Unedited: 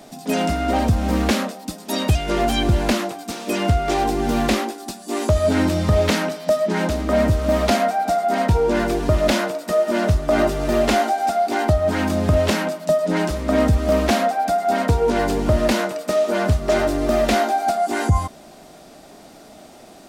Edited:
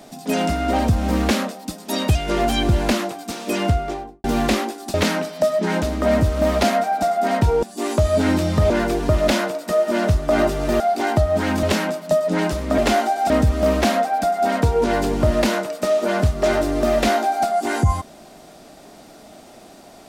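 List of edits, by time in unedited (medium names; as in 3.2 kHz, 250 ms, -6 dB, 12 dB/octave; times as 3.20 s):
3.60–4.24 s: studio fade out
4.94–6.01 s: move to 8.70 s
10.80–11.32 s: move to 13.56 s
12.15–12.41 s: delete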